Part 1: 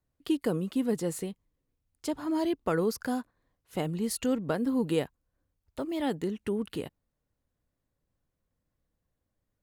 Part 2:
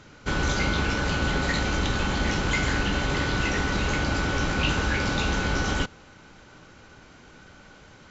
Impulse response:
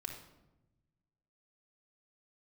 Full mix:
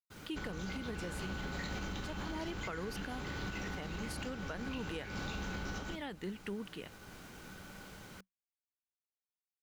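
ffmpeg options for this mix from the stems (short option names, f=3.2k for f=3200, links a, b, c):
-filter_complex "[0:a]equalizer=f=2.1k:t=o:w=2.6:g=13,volume=-12.5dB,asplit=2[a][b];[1:a]acompressor=threshold=-28dB:ratio=6,acrusher=bits=8:mix=0:aa=0.000001,adelay=100,volume=-3.5dB,asplit=2[c][d];[d]volume=-12.5dB[e];[b]apad=whole_len=361903[f];[c][f]sidechaincompress=threshold=-43dB:ratio=8:attack=39:release=753[g];[2:a]atrim=start_sample=2205[h];[e][h]afir=irnorm=-1:irlink=0[i];[a][g][i]amix=inputs=3:normalize=0,agate=range=-33dB:threshold=-52dB:ratio=3:detection=peak,equalizer=f=190:w=5.9:g=8,alimiter=level_in=7dB:limit=-24dB:level=0:latency=1:release=191,volume=-7dB"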